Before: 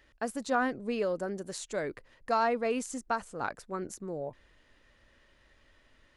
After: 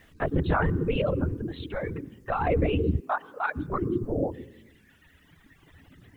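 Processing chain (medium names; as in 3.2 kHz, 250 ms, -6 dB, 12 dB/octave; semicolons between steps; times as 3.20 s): LPC vocoder at 8 kHz whisper; 1.19–2.47 s: compression 2:1, threshold -39 dBFS, peak gain reduction 9 dB; on a send at -9 dB: reverberation RT60 1.0 s, pre-delay 93 ms; on the sum: peak limiter -21.5 dBFS, peak gain reduction 6.5 dB; bit crusher 12-bit; 3.01–3.56 s: high-pass 540 Hz 12 dB/octave; reverb removal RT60 1.9 s; warped record 33 1/3 rpm, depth 100 cents; trim +7.5 dB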